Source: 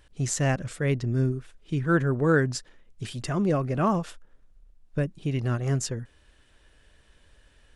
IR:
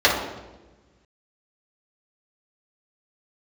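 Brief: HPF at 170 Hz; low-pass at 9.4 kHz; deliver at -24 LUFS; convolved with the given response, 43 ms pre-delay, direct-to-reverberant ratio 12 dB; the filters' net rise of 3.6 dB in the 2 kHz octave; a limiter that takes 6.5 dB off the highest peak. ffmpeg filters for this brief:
-filter_complex "[0:a]highpass=170,lowpass=9400,equalizer=f=2000:t=o:g=5,alimiter=limit=0.168:level=0:latency=1,asplit=2[s0][s1];[1:a]atrim=start_sample=2205,adelay=43[s2];[s1][s2]afir=irnorm=-1:irlink=0,volume=0.0188[s3];[s0][s3]amix=inputs=2:normalize=0,volume=1.88"

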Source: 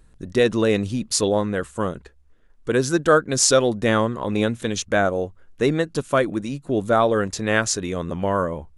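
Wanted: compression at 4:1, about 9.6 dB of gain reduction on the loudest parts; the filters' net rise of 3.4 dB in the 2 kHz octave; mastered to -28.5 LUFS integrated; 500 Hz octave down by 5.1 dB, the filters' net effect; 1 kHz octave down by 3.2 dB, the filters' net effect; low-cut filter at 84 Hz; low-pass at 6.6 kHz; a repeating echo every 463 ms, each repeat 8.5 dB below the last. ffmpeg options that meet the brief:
-af "highpass=84,lowpass=6600,equalizer=f=500:t=o:g=-5,equalizer=f=1000:t=o:g=-6,equalizer=f=2000:t=o:g=7.5,acompressor=threshold=0.0501:ratio=4,aecho=1:1:463|926|1389|1852:0.376|0.143|0.0543|0.0206,volume=1.12"

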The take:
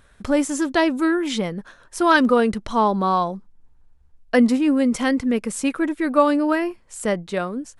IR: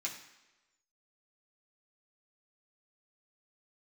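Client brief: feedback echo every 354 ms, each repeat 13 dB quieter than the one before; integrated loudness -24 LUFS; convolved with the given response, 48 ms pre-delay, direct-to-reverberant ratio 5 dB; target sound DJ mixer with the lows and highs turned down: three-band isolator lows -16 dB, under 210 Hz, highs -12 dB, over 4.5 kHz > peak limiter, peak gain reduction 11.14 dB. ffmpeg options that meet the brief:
-filter_complex "[0:a]aecho=1:1:354|708|1062:0.224|0.0493|0.0108,asplit=2[s0][s1];[1:a]atrim=start_sample=2205,adelay=48[s2];[s1][s2]afir=irnorm=-1:irlink=0,volume=0.501[s3];[s0][s3]amix=inputs=2:normalize=0,acrossover=split=210 4500:gain=0.158 1 0.251[s4][s5][s6];[s4][s5][s6]amix=inputs=3:normalize=0,alimiter=limit=0.211:level=0:latency=1"

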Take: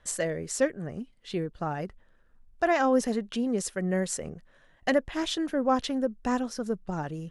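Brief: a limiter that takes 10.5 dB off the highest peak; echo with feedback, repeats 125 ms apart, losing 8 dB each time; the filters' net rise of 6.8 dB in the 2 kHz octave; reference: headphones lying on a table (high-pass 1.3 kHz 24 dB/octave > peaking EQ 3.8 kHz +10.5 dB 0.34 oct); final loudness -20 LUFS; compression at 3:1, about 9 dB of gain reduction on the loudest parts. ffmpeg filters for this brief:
-af "equalizer=f=2000:t=o:g=8,acompressor=threshold=0.0316:ratio=3,alimiter=level_in=1.41:limit=0.0631:level=0:latency=1,volume=0.708,highpass=f=1300:w=0.5412,highpass=f=1300:w=1.3066,equalizer=f=3800:t=o:w=0.34:g=10.5,aecho=1:1:125|250|375|500|625:0.398|0.159|0.0637|0.0255|0.0102,volume=8.91"

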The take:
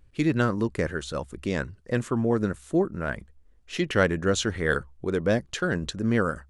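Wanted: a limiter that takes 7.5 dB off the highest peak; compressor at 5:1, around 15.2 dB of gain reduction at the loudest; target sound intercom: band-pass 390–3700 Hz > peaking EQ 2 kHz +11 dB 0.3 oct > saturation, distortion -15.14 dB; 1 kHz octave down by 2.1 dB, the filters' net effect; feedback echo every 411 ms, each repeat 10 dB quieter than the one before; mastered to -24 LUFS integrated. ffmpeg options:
-af "equalizer=f=1000:t=o:g=-4,acompressor=threshold=0.0158:ratio=5,alimiter=level_in=2.24:limit=0.0631:level=0:latency=1,volume=0.447,highpass=390,lowpass=3700,equalizer=f=2000:t=o:w=0.3:g=11,aecho=1:1:411|822|1233|1644:0.316|0.101|0.0324|0.0104,asoftclip=threshold=0.0158,volume=13.3"

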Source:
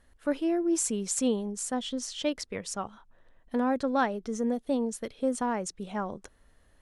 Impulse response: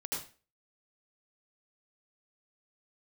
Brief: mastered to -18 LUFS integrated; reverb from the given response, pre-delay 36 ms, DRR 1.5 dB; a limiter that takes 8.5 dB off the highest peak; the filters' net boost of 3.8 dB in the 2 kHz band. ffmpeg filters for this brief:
-filter_complex "[0:a]equalizer=f=2000:t=o:g=5,alimiter=limit=0.0841:level=0:latency=1,asplit=2[s0][s1];[1:a]atrim=start_sample=2205,adelay=36[s2];[s1][s2]afir=irnorm=-1:irlink=0,volume=0.668[s3];[s0][s3]amix=inputs=2:normalize=0,volume=3.76"

